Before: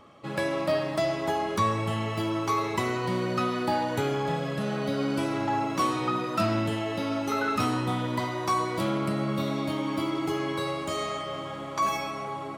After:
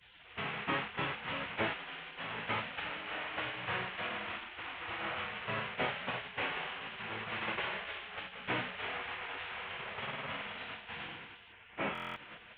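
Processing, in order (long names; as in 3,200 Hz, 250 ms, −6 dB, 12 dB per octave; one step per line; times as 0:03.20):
linear delta modulator 16 kbit/s, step −26.5 dBFS
high-pass filter 170 Hz 6 dB per octave
downward expander −25 dBFS
0:11.52–0:12.11: Bessel low-pass filter 2,400 Hz, order 8
gate on every frequency bin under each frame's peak −15 dB weak
buffer that repeats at 0:11.93, samples 1,024, times 9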